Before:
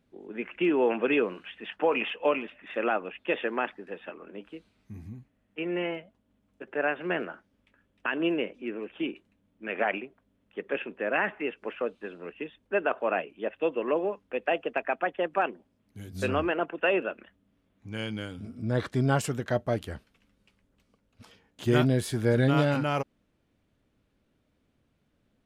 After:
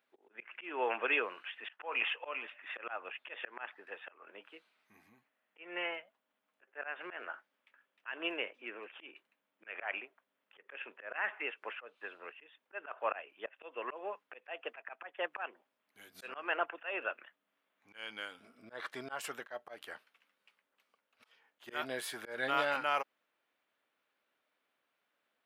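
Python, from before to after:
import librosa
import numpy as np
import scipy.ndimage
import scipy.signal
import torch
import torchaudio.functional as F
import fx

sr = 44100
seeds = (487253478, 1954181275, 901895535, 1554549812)

y = scipy.signal.sosfilt(scipy.signal.butter(2, 1000.0, 'highpass', fs=sr, output='sos'), x)
y = fx.peak_eq(y, sr, hz=6900.0, db=-10.5, octaves=1.8)
y = fx.auto_swell(y, sr, attack_ms=205.0)
y = y * 10.0 ** (2.5 / 20.0)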